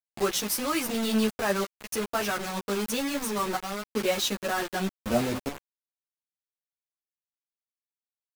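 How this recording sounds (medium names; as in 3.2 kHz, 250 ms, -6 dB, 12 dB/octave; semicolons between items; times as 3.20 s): chopped level 0.52 Hz, depth 65%, duty 85%; a quantiser's noise floor 6-bit, dither none; a shimmering, thickened sound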